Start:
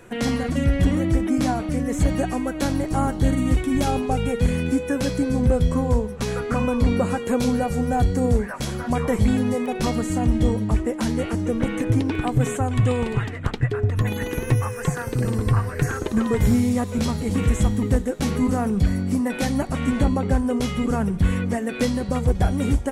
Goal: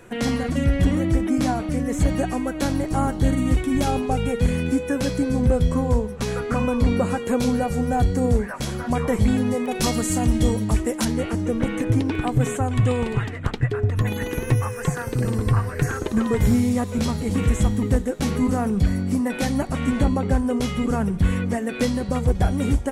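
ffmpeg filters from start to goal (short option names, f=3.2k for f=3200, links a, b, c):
-filter_complex "[0:a]asettb=1/sr,asplit=3[a][b][c];[a]atrim=end=9.714[d];[b]atrim=start=9.71:end=11.05,asetpts=PTS-STARTPTS,afade=t=in:d=0.004:c=qsin,afade=t=out:st=1.336:d=0.004:c=qsin,highshelf=f=3.6k:g=11[e];[c]atrim=start=11.046[f];[d][e]acrossfade=d=0.004:c1=hsin:c2=qsin[g];[g][f]acrossfade=d=0.004:c1=qsin:c2=hsin"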